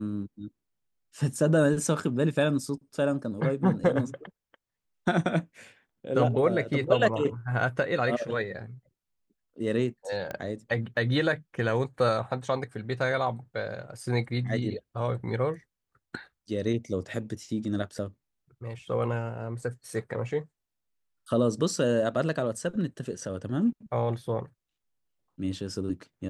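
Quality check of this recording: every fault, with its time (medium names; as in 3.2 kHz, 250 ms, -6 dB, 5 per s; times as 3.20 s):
10.31 s: pop -21 dBFS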